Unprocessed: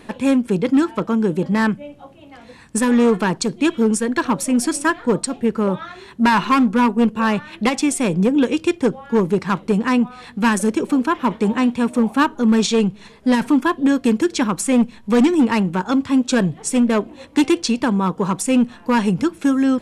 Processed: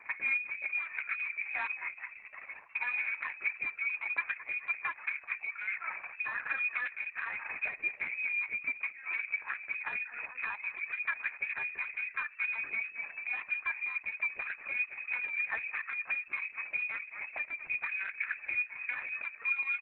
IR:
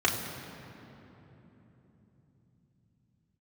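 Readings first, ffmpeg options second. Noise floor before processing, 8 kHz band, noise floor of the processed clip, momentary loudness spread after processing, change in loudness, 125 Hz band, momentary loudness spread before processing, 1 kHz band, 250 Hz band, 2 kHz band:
-44 dBFS, under -40 dB, -53 dBFS, 5 LU, -16.0 dB, under -40 dB, 5 LU, -23.0 dB, under -40 dB, -4.5 dB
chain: -filter_complex "[0:a]acrossover=split=230 2100:gain=0.0891 1 0.178[a][b][c];[a][b][c]amix=inputs=3:normalize=0,asplit=6[d][e][f][g][h][i];[e]adelay=214,afreqshift=-42,volume=-18dB[j];[f]adelay=428,afreqshift=-84,volume=-23.4dB[k];[g]adelay=642,afreqshift=-126,volume=-28.7dB[l];[h]adelay=856,afreqshift=-168,volume=-34.1dB[m];[i]adelay=1070,afreqshift=-210,volume=-39.4dB[n];[d][j][k][l][m][n]amix=inputs=6:normalize=0,lowpass=f=2.3k:t=q:w=0.5098,lowpass=f=2.3k:t=q:w=0.6013,lowpass=f=2.3k:t=q:w=0.9,lowpass=f=2.3k:t=q:w=2.563,afreqshift=-2700,asplit=2[o][p];[p]asoftclip=type=hard:threshold=-22.5dB,volume=-6dB[q];[o][q]amix=inputs=2:normalize=0,acompressor=threshold=-25dB:ratio=8,volume=-6dB" -ar 48000 -c:a libopus -b:a 6k

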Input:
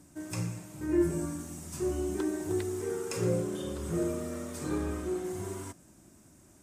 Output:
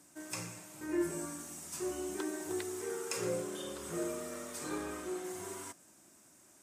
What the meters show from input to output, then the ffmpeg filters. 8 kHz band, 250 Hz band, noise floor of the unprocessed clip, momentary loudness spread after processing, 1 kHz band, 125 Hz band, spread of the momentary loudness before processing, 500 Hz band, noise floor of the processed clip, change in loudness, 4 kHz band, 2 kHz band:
+1.0 dB, -7.5 dB, -59 dBFS, 8 LU, -1.0 dB, -14.5 dB, 9 LU, -5.5 dB, -62 dBFS, -5.5 dB, +1.0 dB, 0.0 dB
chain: -af "highpass=f=770:p=1,volume=1dB"

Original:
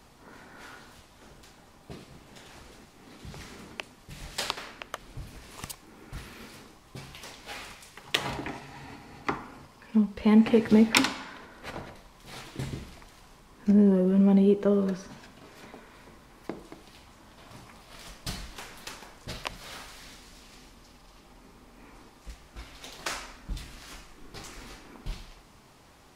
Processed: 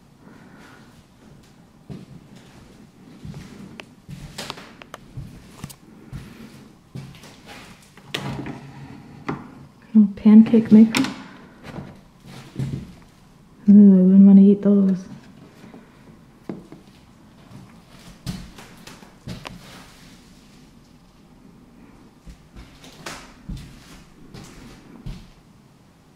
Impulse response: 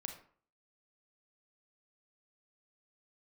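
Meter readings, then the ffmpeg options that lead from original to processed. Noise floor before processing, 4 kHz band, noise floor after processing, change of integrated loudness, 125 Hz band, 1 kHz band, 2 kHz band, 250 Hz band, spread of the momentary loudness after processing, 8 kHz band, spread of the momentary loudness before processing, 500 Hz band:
-56 dBFS, -1.5 dB, -52 dBFS, +11.5 dB, +10.5 dB, -0.5 dB, -1.5 dB, +10.0 dB, 23 LU, n/a, 24 LU, +2.5 dB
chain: -af "equalizer=f=170:w=0.83:g=13.5,volume=-1.5dB"

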